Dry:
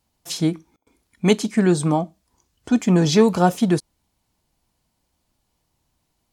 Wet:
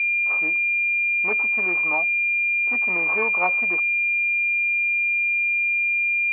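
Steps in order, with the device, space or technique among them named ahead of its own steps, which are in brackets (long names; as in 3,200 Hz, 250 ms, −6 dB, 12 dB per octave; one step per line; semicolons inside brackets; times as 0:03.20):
toy sound module (linearly interpolated sample-rate reduction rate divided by 8×; switching amplifier with a slow clock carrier 2,400 Hz; loudspeaker in its box 770–3,900 Hz, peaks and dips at 1,100 Hz +8 dB, 1,600 Hz −5 dB, 2,300 Hz +10 dB, 3,500 Hz −6 dB)
level −2 dB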